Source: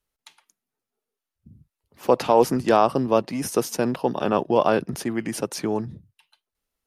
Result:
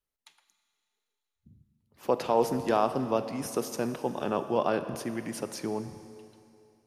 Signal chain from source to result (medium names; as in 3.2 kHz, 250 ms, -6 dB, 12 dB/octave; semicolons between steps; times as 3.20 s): Schroeder reverb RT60 2.6 s, combs from 27 ms, DRR 10 dB; trim -8 dB